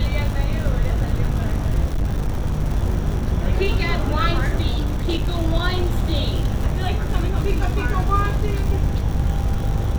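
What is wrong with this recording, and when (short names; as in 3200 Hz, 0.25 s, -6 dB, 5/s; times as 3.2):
buzz 50 Hz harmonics 39 -24 dBFS
crackle 160/s -26 dBFS
1.92–2.54 clipped -16.5 dBFS
4.7–5.42 clipped -16.5 dBFS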